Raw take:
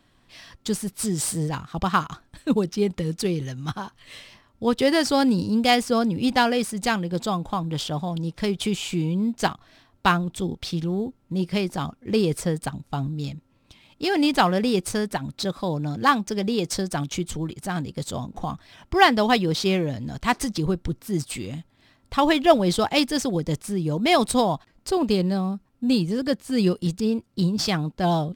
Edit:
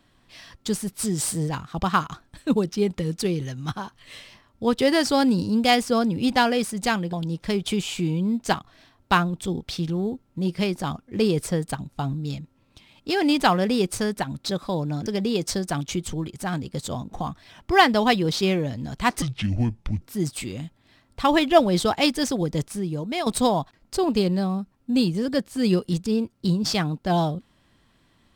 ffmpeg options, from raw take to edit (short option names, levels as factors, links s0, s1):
-filter_complex "[0:a]asplit=6[s0][s1][s2][s3][s4][s5];[s0]atrim=end=7.132[s6];[s1]atrim=start=8.068:end=16.002[s7];[s2]atrim=start=16.288:end=20.454[s8];[s3]atrim=start=20.45:end=20.95,asetpts=PTS-STARTPTS,asetrate=27783,aresample=44100[s9];[s4]atrim=start=20.946:end=24.2,asetpts=PTS-STARTPTS,afade=t=out:st=2.654:d=0.6:silence=0.266073[s10];[s5]atrim=start=24.2,asetpts=PTS-STARTPTS,afade=t=in:d=0.004:c=hsin:silence=0.266073[s11];[s6][s7]acrossfade=d=0.004:c1=hsin:c2=hsin[s12];[s12][s8]acrossfade=d=0.004:c1=hsin:c2=hsin[s13];[s13][s9]acrossfade=d=0.004:c1=hsin:c2=hsin[s14];[s10][s11]concat=n=2:v=0:a=1[s15];[s14][s15]acrossfade=d=0.004:c1=hsin:c2=hsin"